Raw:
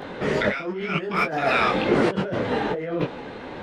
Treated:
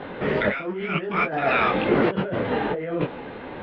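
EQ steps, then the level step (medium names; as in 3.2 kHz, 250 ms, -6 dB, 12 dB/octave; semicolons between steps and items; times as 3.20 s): low-pass 3.4 kHz 24 dB/octave; 0.0 dB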